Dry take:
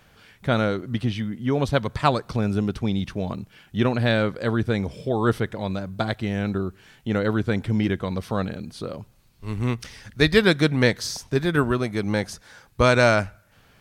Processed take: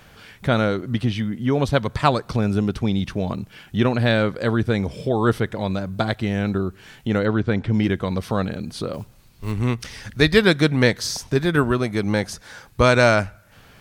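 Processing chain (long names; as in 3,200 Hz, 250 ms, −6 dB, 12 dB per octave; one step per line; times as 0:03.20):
in parallel at 0 dB: downward compressor, threshold −34 dBFS, peak gain reduction 21 dB
0:07.25–0:07.74: on the sum: high-frequency loss of the air 110 metres
0:08.93–0:09.52: noise that follows the level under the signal 26 dB
level +1 dB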